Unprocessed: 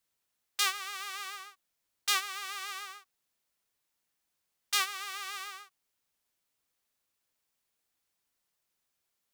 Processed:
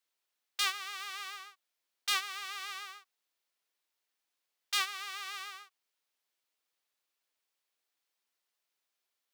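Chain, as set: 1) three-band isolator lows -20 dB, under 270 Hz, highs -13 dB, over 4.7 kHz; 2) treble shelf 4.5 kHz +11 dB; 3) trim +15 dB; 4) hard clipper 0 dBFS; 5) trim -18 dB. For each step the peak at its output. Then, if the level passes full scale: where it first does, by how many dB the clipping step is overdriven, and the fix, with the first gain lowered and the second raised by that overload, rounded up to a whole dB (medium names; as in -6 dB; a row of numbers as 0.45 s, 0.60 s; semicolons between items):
-15.0 dBFS, -11.0 dBFS, +4.0 dBFS, 0.0 dBFS, -18.0 dBFS; step 3, 4.0 dB; step 3 +11 dB, step 5 -14 dB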